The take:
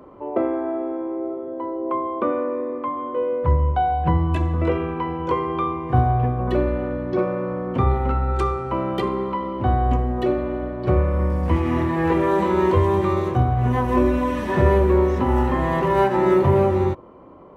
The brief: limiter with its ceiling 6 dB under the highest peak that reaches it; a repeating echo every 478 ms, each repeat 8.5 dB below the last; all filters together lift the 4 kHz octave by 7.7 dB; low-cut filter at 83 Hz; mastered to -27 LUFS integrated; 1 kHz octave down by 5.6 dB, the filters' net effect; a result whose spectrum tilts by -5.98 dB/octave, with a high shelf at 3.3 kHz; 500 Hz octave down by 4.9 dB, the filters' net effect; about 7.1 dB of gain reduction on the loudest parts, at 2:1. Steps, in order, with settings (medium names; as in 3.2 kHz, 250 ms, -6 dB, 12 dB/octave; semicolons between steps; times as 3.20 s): high-pass 83 Hz; peaking EQ 500 Hz -6 dB; peaking EQ 1 kHz -6 dB; treble shelf 3.3 kHz +7.5 dB; peaking EQ 4 kHz +6 dB; compression 2:1, threshold -29 dBFS; peak limiter -21.5 dBFS; feedback delay 478 ms, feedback 38%, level -8.5 dB; trim +3.5 dB